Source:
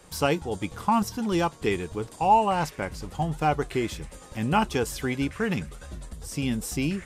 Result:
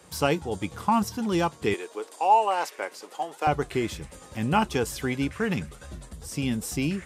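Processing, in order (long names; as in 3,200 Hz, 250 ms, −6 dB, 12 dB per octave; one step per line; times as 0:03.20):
high-pass filter 59 Hz 24 dB per octave, from 0:01.74 370 Hz, from 0:03.47 54 Hz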